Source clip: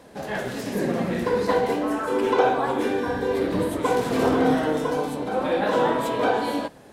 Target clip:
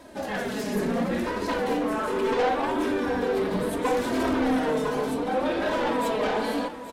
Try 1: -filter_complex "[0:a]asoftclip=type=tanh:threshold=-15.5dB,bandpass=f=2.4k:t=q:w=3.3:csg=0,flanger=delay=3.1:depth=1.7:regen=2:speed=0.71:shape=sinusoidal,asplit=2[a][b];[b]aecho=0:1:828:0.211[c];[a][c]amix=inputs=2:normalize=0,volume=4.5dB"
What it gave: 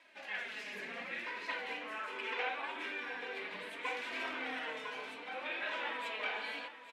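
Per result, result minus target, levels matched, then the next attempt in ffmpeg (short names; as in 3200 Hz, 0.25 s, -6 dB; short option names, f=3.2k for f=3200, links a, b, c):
2000 Hz band +8.5 dB; soft clip: distortion -7 dB
-filter_complex "[0:a]asoftclip=type=tanh:threshold=-15.5dB,flanger=delay=3.1:depth=1.7:regen=2:speed=0.71:shape=sinusoidal,asplit=2[a][b];[b]aecho=0:1:828:0.211[c];[a][c]amix=inputs=2:normalize=0,volume=4.5dB"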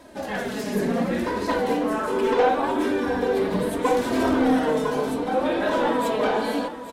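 soft clip: distortion -7 dB
-filter_complex "[0:a]asoftclip=type=tanh:threshold=-23dB,flanger=delay=3.1:depth=1.7:regen=2:speed=0.71:shape=sinusoidal,asplit=2[a][b];[b]aecho=0:1:828:0.211[c];[a][c]amix=inputs=2:normalize=0,volume=4.5dB"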